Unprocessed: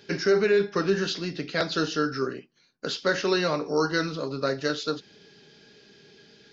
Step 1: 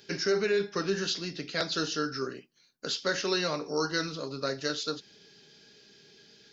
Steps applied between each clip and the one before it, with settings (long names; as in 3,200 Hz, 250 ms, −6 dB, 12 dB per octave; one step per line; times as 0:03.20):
high-shelf EQ 4,400 Hz +12 dB
level −6 dB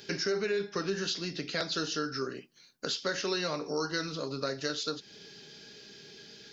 downward compressor 2 to 1, threshold −42 dBFS, peak gain reduction 10.5 dB
level +6 dB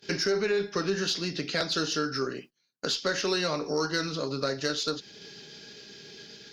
noise gate −51 dBFS, range −21 dB
harmonic generator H 4 −30 dB, 5 −32 dB, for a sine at −18.5 dBFS
level +3.5 dB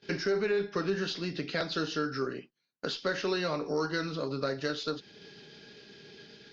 high-frequency loss of the air 170 metres
level −1.5 dB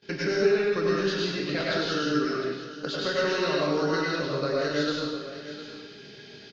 single-tap delay 709 ms −13.5 dB
dense smooth reverb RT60 1 s, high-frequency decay 0.95×, pre-delay 85 ms, DRR −4.5 dB